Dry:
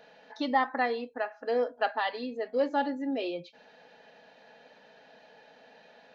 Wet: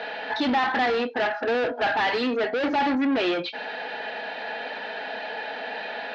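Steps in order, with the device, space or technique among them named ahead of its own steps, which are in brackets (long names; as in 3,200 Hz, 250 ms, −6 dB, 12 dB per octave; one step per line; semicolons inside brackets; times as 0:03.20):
overdrive pedal into a guitar cabinet (mid-hump overdrive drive 35 dB, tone 2,400 Hz, clips at −14 dBFS; loudspeaker in its box 90–4,500 Hz, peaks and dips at 99 Hz −9 dB, 160 Hz −7 dB, 540 Hz −7 dB, 1,100 Hz −5 dB)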